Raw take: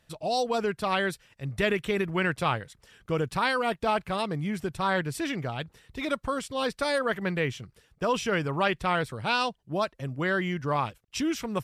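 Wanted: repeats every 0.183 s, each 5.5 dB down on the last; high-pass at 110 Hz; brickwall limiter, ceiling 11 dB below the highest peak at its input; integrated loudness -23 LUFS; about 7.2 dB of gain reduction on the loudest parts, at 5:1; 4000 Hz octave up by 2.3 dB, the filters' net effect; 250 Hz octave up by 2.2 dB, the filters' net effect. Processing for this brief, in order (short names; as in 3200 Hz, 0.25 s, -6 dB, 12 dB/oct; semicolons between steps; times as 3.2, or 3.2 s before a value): HPF 110 Hz; bell 250 Hz +3.5 dB; bell 4000 Hz +3 dB; compressor 5:1, threshold -29 dBFS; limiter -28.5 dBFS; feedback echo 0.183 s, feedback 53%, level -5.5 dB; gain +14 dB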